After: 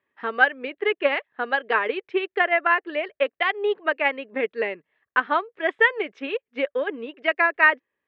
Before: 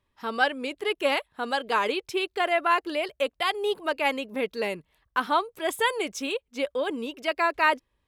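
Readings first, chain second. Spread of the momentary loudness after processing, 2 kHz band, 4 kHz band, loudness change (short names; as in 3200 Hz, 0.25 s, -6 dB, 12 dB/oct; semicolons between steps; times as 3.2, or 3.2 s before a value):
10 LU, +7.5 dB, -3.0 dB, +4.0 dB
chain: transient shaper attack +5 dB, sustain -4 dB; speaker cabinet 260–2800 Hz, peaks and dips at 420 Hz +3 dB, 940 Hz -4 dB, 1800 Hz +9 dB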